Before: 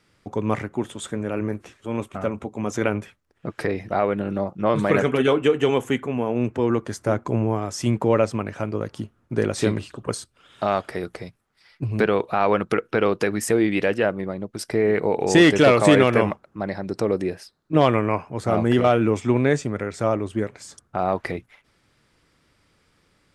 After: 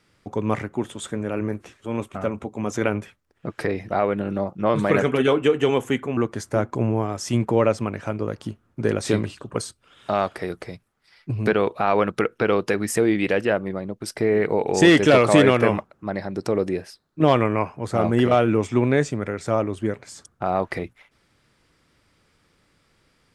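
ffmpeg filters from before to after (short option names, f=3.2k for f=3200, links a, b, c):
-filter_complex "[0:a]asplit=2[a][b];[a]atrim=end=6.172[c];[b]atrim=start=6.698[d];[c][d]acrossfade=d=0.004:c1=hsin:c2=hsin"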